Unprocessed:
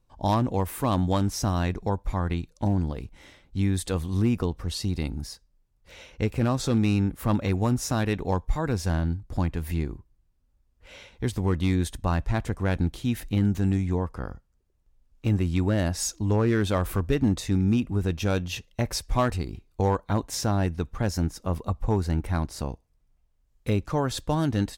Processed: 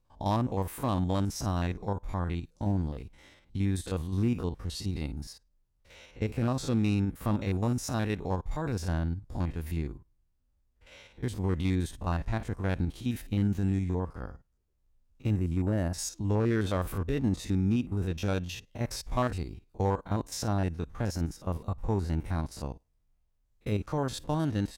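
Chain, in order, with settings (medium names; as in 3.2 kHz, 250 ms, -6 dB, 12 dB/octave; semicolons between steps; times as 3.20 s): spectrogram pixelated in time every 50 ms; 15.36–15.94 s: peaking EQ 3.7 kHz -12 dB 1.3 oct; trim -4 dB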